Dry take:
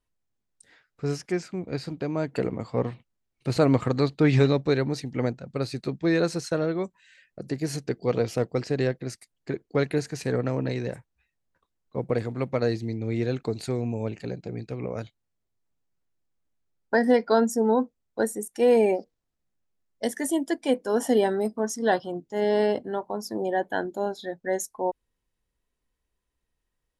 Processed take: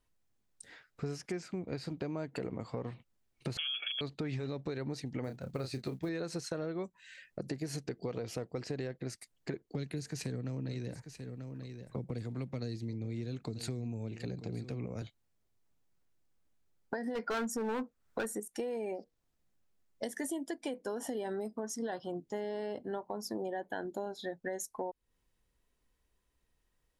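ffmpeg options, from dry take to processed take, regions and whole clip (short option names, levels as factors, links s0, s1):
-filter_complex "[0:a]asettb=1/sr,asplit=3[s0][s1][s2];[s0]atrim=end=3.574[s3];[s1]atrim=start=3.57:end=4.01,asetpts=PTS-STARTPTS,afade=t=in:d=0.004:c=qsin,afade=t=out:st=0.436:d=0.004:c=qsin,highpass=140,aecho=1:1:1:0.86,atrim=end_sample=19404,lowpass=f=3000:t=q:w=0.5098,lowpass=f=3000:t=q:w=0.6013,lowpass=f=3000:t=q:w=0.9,lowpass=f=3000:t=q:w=2.563,afreqshift=-3500[s4];[s2]atrim=start=4.006[s5];[s3][s4]acrossfade=d=0.004:c1=hsin:c2=qsin[s6];[s6][s5]acrossfade=d=0.004:c1=qsin:c2=hsin,asettb=1/sr,asplit=3[s7][s8][s9];[s7]atrim=end=5.244[s10];[s8]atrim=start=5.24:end=6.09,asetpts=PTS-STARTPTS,afade=t=in:d=0.004:c=qsin,afade=t=out:st=0.846:d=0.004:c=qsin,equalizer=f=88:t=o:w=0.24:g=6,acrusher=bits=8:mode=log:mix=0:aa=0.000001,asplit=2[s11][s12];[s12]adelay=31,volume=0.355[s13];[s11][s13]amix=inputs=2:normalize=0,atrim=end_sample=37485[s14];[s9]atrim=start=6.086[s15];[s10][s14]acrossfade=d=0.004:c1=hsin:c2=qsin[s16];[s16][s15]acrossfade=d=0.004:c1=qsin:c2=hsin,asettb=1/sr,asplit=3[s17][s18][s19];[s17]atrim=end=9.684[s20];[s18]atrim=start=9.68:end=15.02,asetpts=PTS-STARTPTS,afade=t=in:d=0.004:c=qsin,afade=t=out:st=5.336:d=0.004:c=qsin,acrossover=split=290|3000[s21][s22][s23];[s22]acompressor=threshold=0.00794:ratio=4:attack=3.2:release=140:knee=2.83:detection=peak[s24];[s21][s24][s23]amix=inputs=3:normalize=0,aecho=1:1:938:0.141,atrim=end_sample=235494[s25];[s19]atrim=start=15.016[s26];[s20][s25]acrossfade=d=0.004:c1=hsin:c2=qsin[s27];[s27][s26]acrossfade=d=0.004:c1=qsin:c2=hsin,asettb=1/sr,asplit=3[s28][s29][s30];[s28]atrim=end=17.154[s31];[s29]atrim=start=17.15:end=18.4,asetpts=PTS-STARTPTS,afade=t=in:d=0.004:c=qsin,afade=t=out:st=1.246:d=0.004:c=qsin,equalizer=f=1400:t=o:w=0.87:g=9,acontrast=53,volume=5.62,asoftclip=hard,volume=0.178[s32];[s30]atrim=start=18.396[s33];[s31][s32]acrossfade=d=0.004:c1=hsin:c2=qsin[s34];[s34][s33]acrossfade=d=0.004:c1=qsin:c2=hsin,alimiter=limit=0.119:level=0:latency=1:release=84,acompressor=threshold=0.0112:ratio=5,volume=1.41"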